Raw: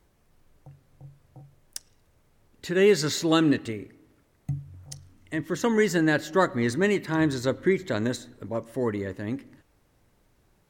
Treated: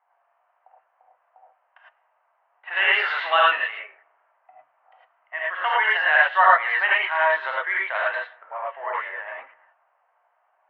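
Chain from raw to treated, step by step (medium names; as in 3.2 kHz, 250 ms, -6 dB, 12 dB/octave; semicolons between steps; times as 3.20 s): 2.67–3.46 s: jump at every zero crossing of -35 dBFS; Chebyshev band-pass 700–3000 Hz, order 4; gated-style reverb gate 130 ms rising, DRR -4.5 dB; level-controlled noise filter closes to 1 kHz, open at -24.5 dBFS; trim +7 dB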